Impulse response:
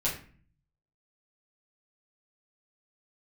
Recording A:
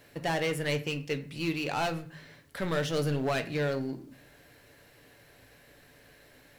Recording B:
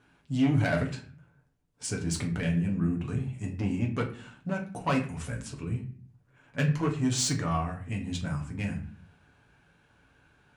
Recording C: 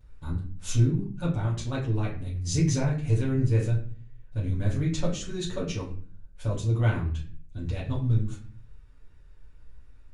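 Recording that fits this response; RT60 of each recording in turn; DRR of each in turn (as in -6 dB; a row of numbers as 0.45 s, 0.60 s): C; 0.45 s, 0.45 s, 0.45 s; 7.5 dB, 0.0 dB, -8.5 dB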